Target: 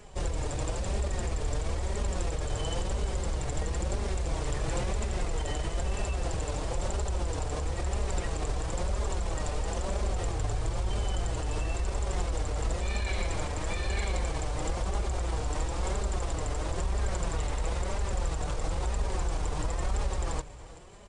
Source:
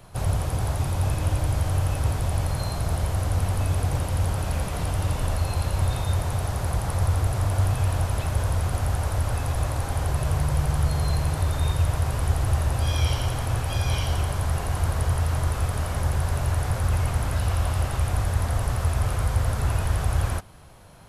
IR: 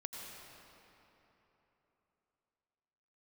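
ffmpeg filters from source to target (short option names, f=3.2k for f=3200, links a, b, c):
-af "alimiter=limit=-20dB:level=0:latency=1:release=59,flanger=delay=3.5:depth=1.5:regen=14:speed=1:shape=triangular,aecho=1:1:377:0.126,asetrate=32097,aresample=44100,atempo=1.37395,volume=3.5dB"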